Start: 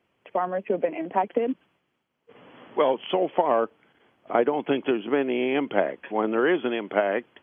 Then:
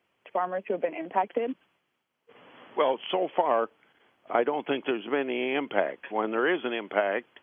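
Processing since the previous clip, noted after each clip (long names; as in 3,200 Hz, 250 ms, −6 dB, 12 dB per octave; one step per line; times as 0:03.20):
low-shelf EQ 460 Hz −8 dB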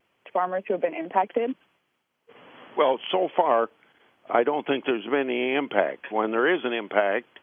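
pitch vibrato 0.34 Hz 8.7 cents
level +3.5 dB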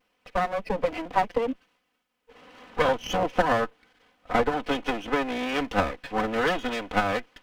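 lower of the sound and its delayed copy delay 4 ms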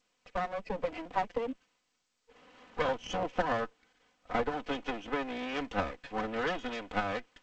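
level −8 dB
G.722 64 kbit/s 16,000 Hz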